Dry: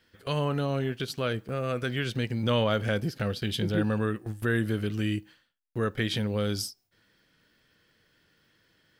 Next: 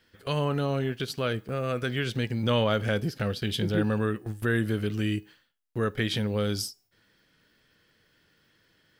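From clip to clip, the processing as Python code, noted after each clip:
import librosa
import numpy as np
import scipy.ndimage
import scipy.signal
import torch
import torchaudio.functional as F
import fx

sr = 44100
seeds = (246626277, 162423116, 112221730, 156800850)

y = fx.comb_fb(x, sr, f0_hz=420.0, decay_s=0.35, harmonics='all', damping=0.0, mix_pct=40)
y = y * 10.0 ** (5.0 / 20.0)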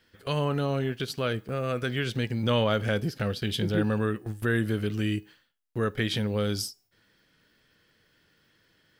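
y = x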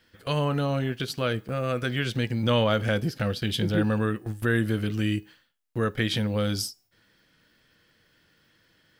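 y = fx.notch(x, sr, hz=410.0, q=12.0)
y = y * 10.0 ** (2.0 / 20.0)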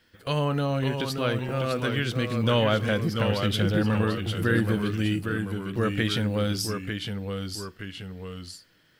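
y = fx.echo_pitch(x, sr, ms=542, semitones=-1, count=2, db_per_echo=-6.0)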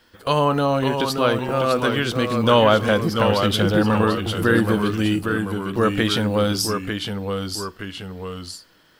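y = fx.graphic_eq_10(x, sr, hz=(125, 1000, 2000), db=(-7, 6, -5))
y = y * 10.0 ** (7.5 / 20.0)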